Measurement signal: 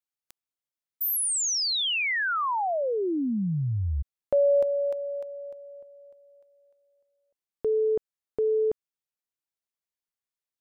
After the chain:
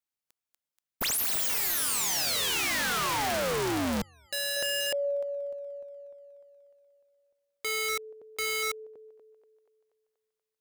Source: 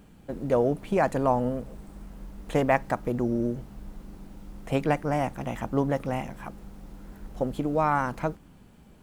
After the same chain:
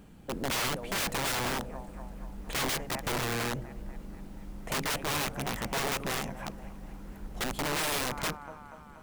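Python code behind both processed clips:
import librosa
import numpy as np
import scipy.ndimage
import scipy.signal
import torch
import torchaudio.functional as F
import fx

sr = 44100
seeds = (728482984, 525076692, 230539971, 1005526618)

y = fx.echo_thinned(x, sr, ms=240, feedback_pct=71, hz=510.0, wet_db=-17)
y = (np.mod(10.0 ** (25.5 / 20.0) * y + 1.0, 2.0) - 1.0) / 10.0 ** (25.5 / 20.0)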